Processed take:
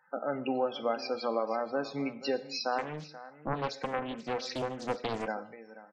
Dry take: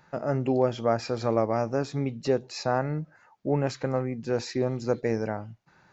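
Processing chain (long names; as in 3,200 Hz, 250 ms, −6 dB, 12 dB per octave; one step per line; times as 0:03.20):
mu-law and A-law mismatch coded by A
high-pass filter 150 Hz 24 dB per octave
low-shelf EQ 500 Hz −10.5 dB
comb filter 3.9 ms, depth 34%
dynamic equaliser 3,200 Hz, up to +5 dB, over −50 dBFS, Q 0.92
downward compressor 2 to 1, threshold −36 dBFS, peak gain reduction 8 dB
spectral peaks only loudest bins 32
single-tap delay 483 ms −16 dB
reverb whose tail is shaped and stops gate 240 ms falling, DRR 11.5 dB
0:02.78–0:05.28: highs frequency-modulated by the lows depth 0.8 ms
level +4.5 dB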